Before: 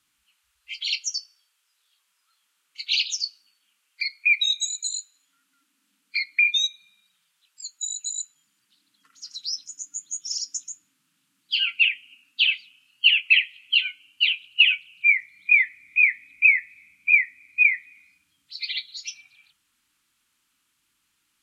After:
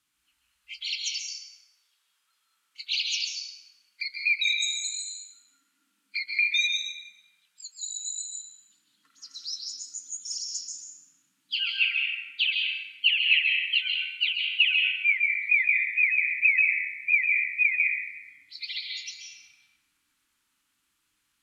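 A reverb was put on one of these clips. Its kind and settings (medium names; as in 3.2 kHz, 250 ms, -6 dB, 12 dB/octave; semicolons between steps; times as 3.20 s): plate-style reverb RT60 1.6 s, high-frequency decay 0.5×, pre-delay 120 ms, DRR -1 dB; trim -5.5 dB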